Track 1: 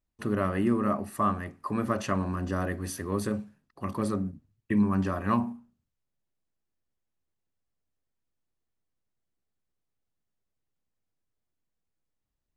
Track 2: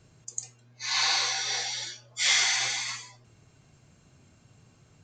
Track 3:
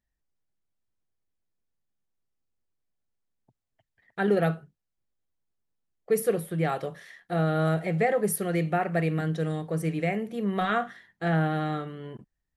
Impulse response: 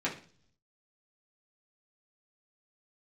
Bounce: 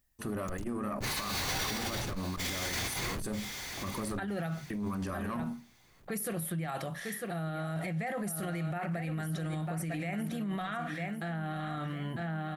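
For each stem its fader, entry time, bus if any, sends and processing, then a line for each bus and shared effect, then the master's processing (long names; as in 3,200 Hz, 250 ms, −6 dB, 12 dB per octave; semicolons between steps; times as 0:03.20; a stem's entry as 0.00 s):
0.0 dB, 0.00 s, bus A, no send, no echo send, high-shelf EQ 5,000 Hz +8 dB; tube saturation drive 17 dB, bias 0.45
+2.5 dB, 0.20 s, no bus, no send, echo send −15.5 dB, comparator with hysteresis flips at −35 dBFS; low-shelf EQ 230 Hz +10.5 dB
+2.5 dB, 0.00 s, bus A, no send, echo send −12 dB, parametric band 440 Hz −14.5 dB 0.46 octaves
bus A: 0.0 dB, high-shelf EQ 9,500 Hz +10 dB; brickwall limiter −17.5 dBFS, peak gain reduction 8 dB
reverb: not used
echo: repeating echo 949 ms, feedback 25%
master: compressor whose output falls as the input rises −30 dBFS, ratio −1; brickwall limiter −28 dBFS, peak gain reduction 11.5 dB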